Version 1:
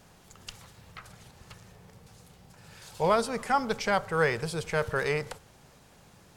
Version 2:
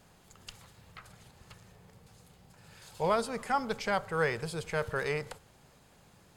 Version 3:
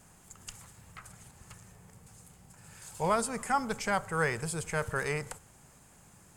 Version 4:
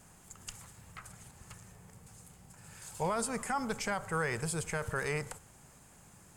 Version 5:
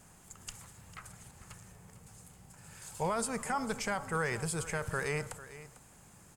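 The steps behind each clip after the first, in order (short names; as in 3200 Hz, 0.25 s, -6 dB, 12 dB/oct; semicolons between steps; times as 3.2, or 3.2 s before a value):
notch 5700 Hz, Q 14; gain -4 dB
graphic EQ 500/4000/8000 Hz -5/-9/+10 dB; gain +2.5 dB
limiter -24 dBFS, peak gain reduction 7.5 dB
echo 0.448 s -15.5 dB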